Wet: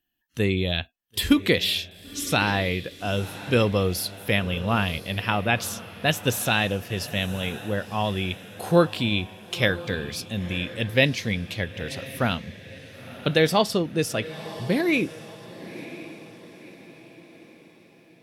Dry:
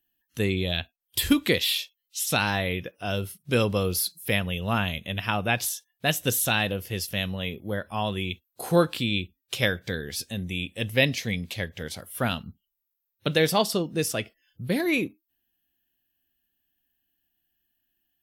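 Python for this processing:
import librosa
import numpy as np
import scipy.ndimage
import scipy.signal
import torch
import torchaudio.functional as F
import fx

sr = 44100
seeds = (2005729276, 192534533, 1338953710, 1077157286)

y = fx.high_shelf(x, sr, hz=7800.0, db=-10.0)
y = fx.echo_diffused(y, sr, ms=998, feedback_pct=46, wet_db=-15)
y = y * 10.0 ** (2.5 / 20.0)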